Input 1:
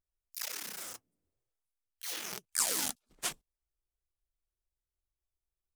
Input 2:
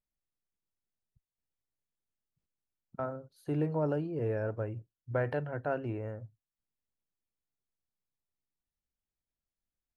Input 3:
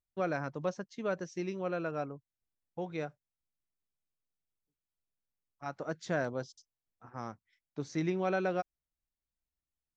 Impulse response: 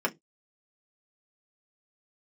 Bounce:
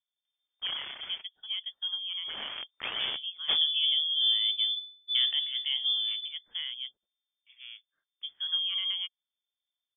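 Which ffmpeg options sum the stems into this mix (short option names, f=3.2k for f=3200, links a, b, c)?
-filter_complex "[0:a]aeval=exprs='(mod(8.41*val(0)+1,2)-1)/8.41':c=same,adelay=250,volume=1.5dB[a];[1:a]equalizer=f=98:t=o:w=1.3:g=13,flanger=delay=8:depth=9.1:regen=-82:speed=0.68:shape=triangular,volume=0.5dB[b];[2:a]adelay=450,volume=-8.5dB[c];[a][b][c]amix=inputs=3:normalize=0,equalizer=f=380:t=o:w=0.62:g=13.5,lowpass=f=3.1k:t=q:w=0.5098,lowpass=f=3.1k:t=q:w=0.6013,lowpass=f=3.1k:t=q:w=0.9,lowpass=f=3.1k:t=q:w=2.563,afreqshift=-3600"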